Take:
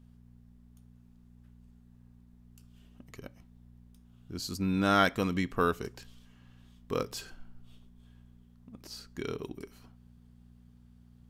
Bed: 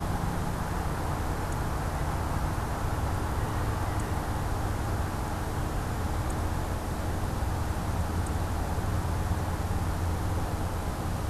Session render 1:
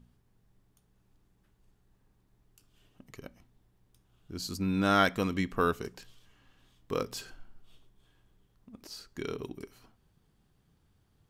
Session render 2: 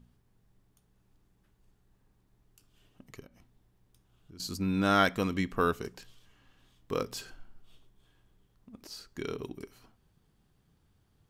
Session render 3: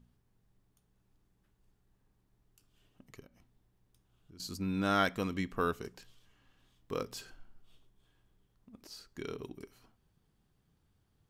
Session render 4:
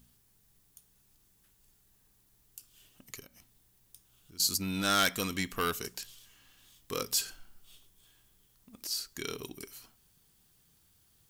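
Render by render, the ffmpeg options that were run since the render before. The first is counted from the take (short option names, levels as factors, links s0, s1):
-af "bandreject=f=60:t=h:w=4,bandreject=f=120:t=h:w=4,bandreject=f=180:t=h:w=4,bandreject=f=240:t=h:w=4"
-filter_complex "[0:a]asettb=1/sr,asplit=3[s0][s1][s2];[s0]atrim=end=3.204[s3];[s1]atrim=start=3.2:end=4.4,asetpts=PTS-STARTPTS,afade=t=in:d=0.004:c=qsin,afade=t=out:st=1.196:d=0.004:c=qsin,acompressor=threshold=0.00282:ratio=3:attack=3.2:release=140:knee=1:detection=peak[s4];[s2]atrim=start=4.396[s5];[s3][s4]acrossfade=d=0.004:c1=hsin:c2=qsin[s6];[s6][s5]acrossfade=d=0.004:c1=qsin:c2=hsin"
-af "volume=0.596"
-af "asoftclip=type=tanh:threshold=0.0501,crystalizer=i=7.5:c=0"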